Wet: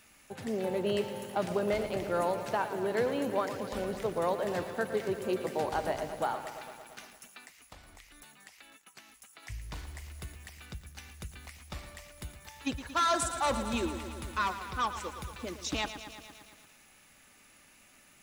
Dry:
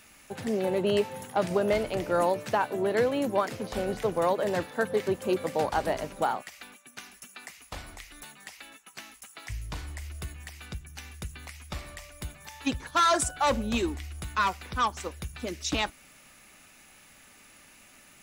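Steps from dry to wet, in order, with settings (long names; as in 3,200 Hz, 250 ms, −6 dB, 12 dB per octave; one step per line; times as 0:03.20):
0:07.43–0:09.43: downward compressor 4 to 1, threshold −45 dBFS, peak gain reduction 9 dB
feedback echo at a low word length 114 ms, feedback 80%, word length 8 bits, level −11 dB
level −5 dB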